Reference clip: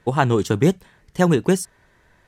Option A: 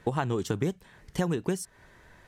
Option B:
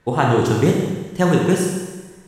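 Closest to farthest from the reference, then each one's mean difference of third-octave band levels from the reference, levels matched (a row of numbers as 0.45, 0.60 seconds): A, B; 2.5, 8.0 decibels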